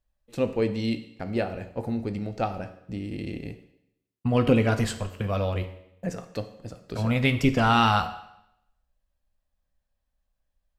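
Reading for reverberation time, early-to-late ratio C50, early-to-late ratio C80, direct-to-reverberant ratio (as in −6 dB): 0.80 s, 12.0 dB, 14.5 dB, 8.5 dB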